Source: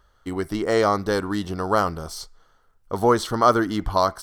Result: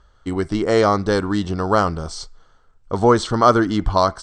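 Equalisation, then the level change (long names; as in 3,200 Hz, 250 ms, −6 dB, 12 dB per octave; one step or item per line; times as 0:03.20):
elliptic low-pass filter 8,100 Hz, stop band 50 dB
low-shelf EQ 270 Hz +5 dB
notch filter 1,900 Hz, Q 30
+3.5 dB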